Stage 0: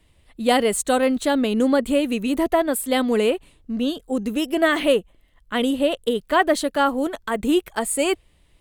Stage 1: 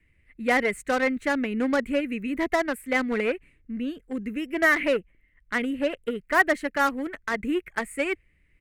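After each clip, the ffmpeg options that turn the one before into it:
-filter_complex "[0:a]firequalizer=gain_entry='entry(890,0);entry(2100,12);entry(3400,-15);entry(6400,-12)':delay=0.05:min_phase=1,acrossover=split=500|1400[s0][s1][s2];[s1]acrusher=bits=3:mix=0:aa=0.5[s3];[s0][s3][s2]amix=inputs=3:normalize=0,volume=0.501"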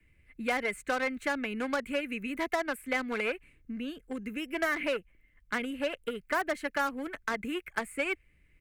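-filter_complex "[0:a]highshelf=f=12000:g=4.5,bandreject=f=1900:w=11,acrossover=split=87|650|4200[s0][s1][s2][s3];[s0]acompressor=threshold=0.00126:ratio=4[s4];[s1]acompressor=threshold=0.0141:ratio=4[s5];[s2]acompressor=threshold=0.0355:ratio=4[s6];[s3]acompressor=threshold=0.00398:ratio=4[s7];[s4][s5][s6][s7]amix=inputs=4:normalize=0"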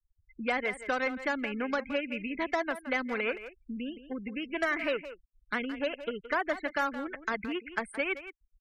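-filter_complex "[0:a]afftfilt=real='re*gte(hypot(re,im),0.00891)':imag='im*gte(hypot(re,im),0.00891)':win_size=1024:overlap=0.75,asplit=2[s0][s1];[s1]adelay=170,highpass=300,lowpass=3400,asoftclip=type=hard:threshold=0.0562,volume=0.251[s2];[s0][s2]amix=inputs=2:normalize=0"

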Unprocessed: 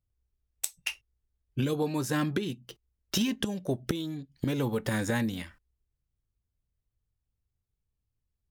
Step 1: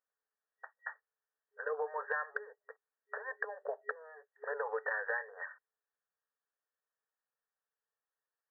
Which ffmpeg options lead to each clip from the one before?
-af "afftfilt=real='re*between(b*sr/4096,410,1900)':imag='im*between(b*sr/4096,410,1900)':win_size=4096:overlap=0.75,tiltshelf=f=1500:g=-10,acompressor=threshold=0.01:ratio=6,volume=2.37"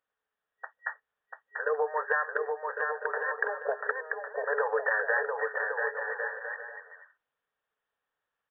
-filter_complex "[0:a]asplit=2[s0][s1];[s1]aecho=0:1:690|1104|1352|1501|1591:0.631|0.398|0.251|0.158|0.1[s2];[s0][s2]amix=inputs=2:normalize=0,aresample=8000,aresample=44100,volume=2.51"

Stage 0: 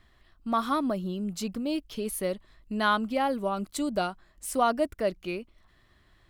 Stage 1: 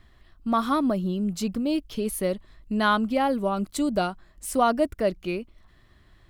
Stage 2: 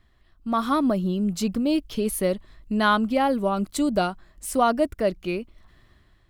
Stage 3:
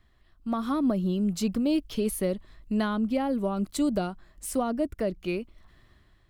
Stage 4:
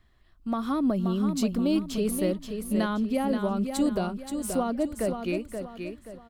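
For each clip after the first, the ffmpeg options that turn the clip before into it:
-af "lowshelf=f=350:g=5,volume=1.26"
-af "dynaudnorm=f=210:g=5:m=2.82,volume=0.501"
-filter_complex "[0:a]acrossover=split=440[s0][s1];[s1]acompressor=threshold=0.0355:ratio=6[s2];[s0][s2]amix=inputs=2:normalize=0,volume=0.794"
-af "aecho=1:1:528|1056|1584|2112:0.447|0.17|0.0645|0.0245"

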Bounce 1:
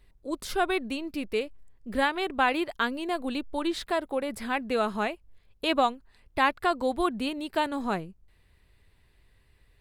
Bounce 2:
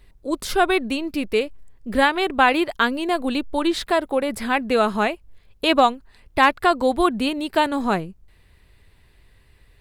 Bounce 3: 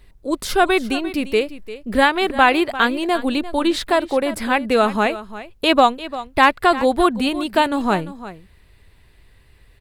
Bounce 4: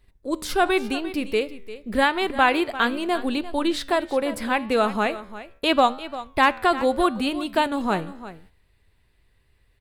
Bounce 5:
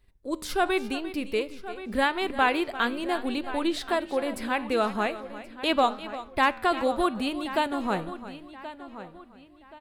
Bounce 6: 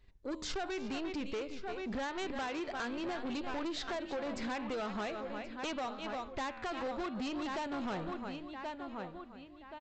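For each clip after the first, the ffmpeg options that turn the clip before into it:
-af "asoftclip=type=hard:threshold=0.251,volume=2.51"
-af "aecho=1:1:347:0.178,volume=1.33"
-af "flanger=delay=9.7:depth=4.6:regen=90:speed=0.81:shape=triangular,agate=range=0.447:threshold=0.00316:ratio=16:detection=peak"
-filter_complex "[0:a]asplit=2[s0][s1];[s1]adelay=1077,lowpass=f=4300:p=1,volume=0.2,asplit=2[s2][s3];[s3]adelay=1077,lowpass=f=4300:p=1,volume=0.35,asplit=2[s4][s5];[s5]adelay=1077,lowpass=f=4300:p=1,volume=0.35[s6];[s0][s2][s4][s6]amix=inputs=4:normalize=0,volume=0.596"
-af "acompressor=threshold=0.0398:ratio=6,aresample=16000,asoftclip=type=tanh:threshold=0.02,aresample=44100"

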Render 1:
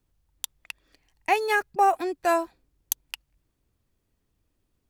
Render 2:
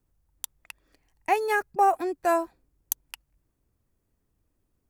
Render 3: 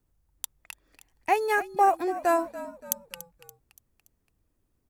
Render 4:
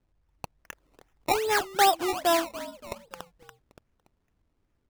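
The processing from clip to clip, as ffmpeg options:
-af "equalizer=f=3500:w=0.86:g=-7.5"
-filter_complex "[0:a]asplit=5[s0][s1][s2][s3][s4];[s1]adelay=286,afreqshift=-52,volume=0.178[s5];[s2]adelay=572,afreqshift=-104,volume=0.0851[s6];[s3]adelay=858,afreqshift=-156,volume=0.0407[s7];[s4]adelay=1144,afreqshift=-208,volume=0.0197[s8];[s0][s5][s6][s7][s8]amix=inputs=5:normalize=0"
-af "acrusher=samples=19:mix=1:aa=0.000001:lfo=1:lforange=19:lforate=2.5"

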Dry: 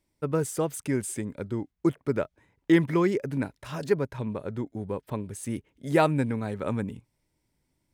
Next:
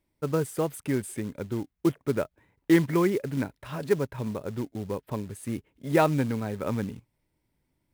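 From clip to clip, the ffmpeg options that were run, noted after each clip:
-af "equalizer=f=6600:w=1.1:g=-9,acrusher=bits=5:mode=log:mix=0:aa=0.000001"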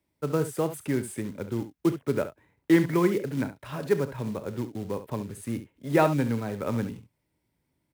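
-filter_complex "[0:a]highpass=64,acrossover=split=200|2900[s0][s1][s2];[s2]asoftclip=type=hard:threshold=0.015[s3];[s0][s1][s3]amix=inputs=3:normalize=0,aecho=1:1:34|69:0.158|0.251"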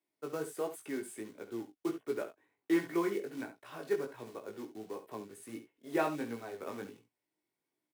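-af "aecho=1:1:2.7:0.33,flanger=delay=16.5:depth=3.6:speed=1.4,highpass=290,volume=0.531"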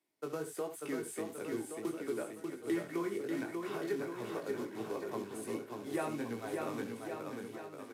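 -filter_complex "[0:a]acrossover=split=130[s0][s1];[s1]acompressor=threshold=0.00891:ratio=2.5[s2];[s0][s2]amix=inputs=2:normalize=0,aecho=1:1:590|1121|1599|2029|2416:0.631|0.398|0.251|0.158|0.1,aresample=32000,aresample=44100,volume=1.5"

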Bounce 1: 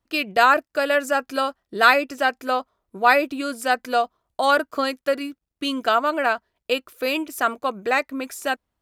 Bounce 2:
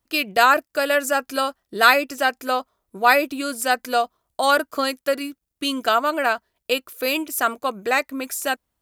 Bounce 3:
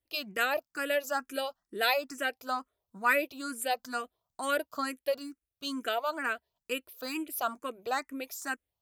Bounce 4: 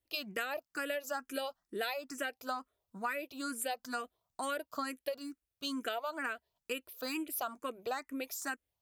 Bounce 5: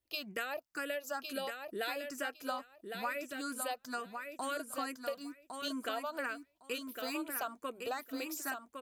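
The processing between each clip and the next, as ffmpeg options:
-af "highshelf=f=6100:g=11"
-filter_complex "[0:a]asplit=2[s0][s1];[s1]afreqshift=2.2[s2];[s0][s2]amix=inputs=2:normalize=1,volume=0.398"
-af "acompressor=threshold=0.0224:ratio=12"
-af "aecho=1:1:1108|2216|3324:0.501|0.0802|0.0128,volume=0.841"

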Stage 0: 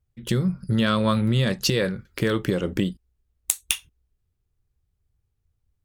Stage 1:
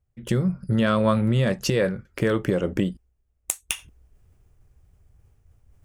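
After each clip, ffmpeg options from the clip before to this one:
-af "equalizer=f=630:t=o:w=0.67:g=5,equalizer=f=4000:t=o:w=0.67:g=-9,equalizer=f=16000:t=o:w=0.67:g=-10,areverse,acompressor=mode=upward:threshold=0.00891:ratio=2.5,areverse"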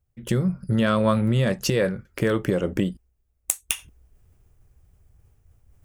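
-af "highshelf=f=11000:g=7.5"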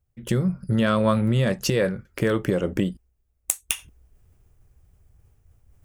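-af anull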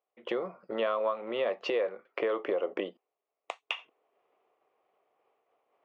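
-af "highpass=f=400:w=0.5412,highpass=f=400:w=1.3066,equalizer=f=490:t=q:w=4:g=3,equalizer=f=710:t=q:w=4:g=7,equalizer=f=1100:t=q:w=4:g=7,equalizer=f=1600:t=q:w=4:g=-8,lowpass=f=3000:w=0.5412,lowpass=f=3000:w=1.3066,acompressor=threshold=0.0501:ratio=10"

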